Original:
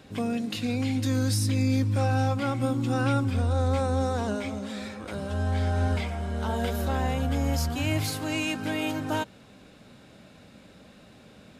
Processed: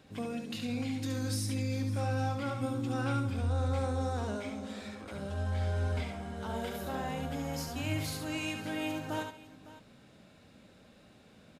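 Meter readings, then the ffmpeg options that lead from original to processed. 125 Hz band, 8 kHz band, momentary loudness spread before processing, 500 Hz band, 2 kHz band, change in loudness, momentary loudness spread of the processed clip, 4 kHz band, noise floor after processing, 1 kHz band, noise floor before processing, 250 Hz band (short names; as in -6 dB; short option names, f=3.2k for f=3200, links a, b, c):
-7.5 dB, -7.0 dB, 7 LU, -7.0 dB, -7.0 dB, -7.5 dB, 8 LU, -7.0 dB, -59 dBFS, -7.0 dB, -52 dBFS, -7.5 dB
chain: -af "aecho=1:1:71|136|558:0.531|0.133|0.141,volume=-8dB"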